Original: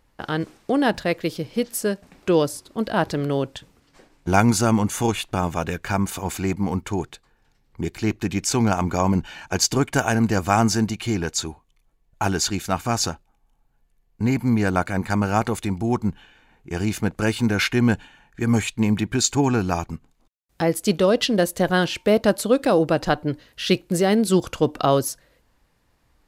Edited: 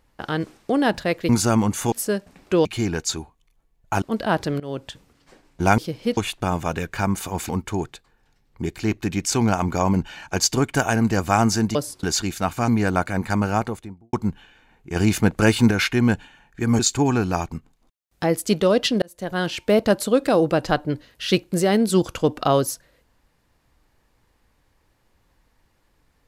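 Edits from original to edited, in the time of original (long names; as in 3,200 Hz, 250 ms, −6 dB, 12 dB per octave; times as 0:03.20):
0:01.29–0:01.68: swap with 0:04.45–0:05.08
0:02.41–0:02.69: swap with 0:10.94–0:12.31
0:03.27–0:03.56: fade in, from −19.5 dB
0:06.40–0:06.68: remove
0:12.96–0:14.48: remove
0:15.22–0:15.93: fade out and dull
0:16.76–0:17.51: clip gain +5 dB
0:18.59–0:19.17: remove
0:21.40–0:22.04: fade in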